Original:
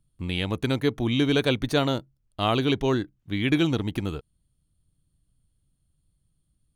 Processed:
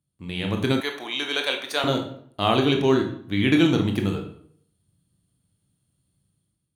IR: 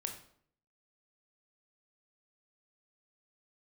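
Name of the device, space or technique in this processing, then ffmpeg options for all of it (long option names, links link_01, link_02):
far laptop microphone: -filter_complex "[1:a]atrim=start_sample=2205[link_01];[0:a][link_01]afir=irnorm=-1:irlink=0,highpass=120,dynaudnorm=framelen=200:gausssize=5:maxgain=9.5dB,asettb=1/sr,asplit=3[link_02][link_03][link_04];[link_02]atrim=end=0.804[link_05];[link_03]atrim=start=0.8:end=1.84,asetpts=PTS-STARTPTS,afade=type=in:duration=0.004:curve=qsin,afade=type=out:start_time=1.036:duration=0.004:curve=qsin,highpass=750[link_06];[link_04]atrim=start=1.836[link_07];[link_05][link_06]acrossfade=duration=0.004:curve1=hsin:curve2=qsin[link_08];[link_08][link_07]acrossfade=duration=0.004:curve1=qsin:curve2=hsin,volume=-3.5dB"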